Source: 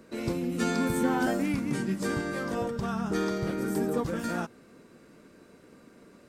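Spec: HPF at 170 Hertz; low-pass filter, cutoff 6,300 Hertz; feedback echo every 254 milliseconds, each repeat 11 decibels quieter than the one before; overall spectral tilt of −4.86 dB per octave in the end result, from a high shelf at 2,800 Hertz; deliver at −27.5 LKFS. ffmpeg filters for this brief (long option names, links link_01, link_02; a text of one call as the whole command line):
ffmpeg -i in.wav -af "highpass=170,lowpass=6300,highshelf=frequency=2800:gain=6.5,aecho=1:1:254|508|762:0.282|0.0789|0.0221,volume=2.5dB" out.wav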